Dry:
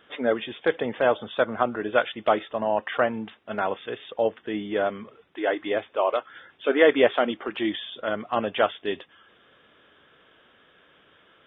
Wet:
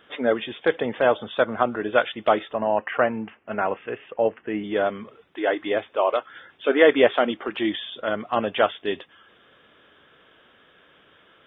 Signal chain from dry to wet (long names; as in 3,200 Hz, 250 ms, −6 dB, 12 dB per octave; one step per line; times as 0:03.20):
0:02.54–0:04.64: Butterworth low-pass 2,900 Hz 72 dB per octave
level +2 dB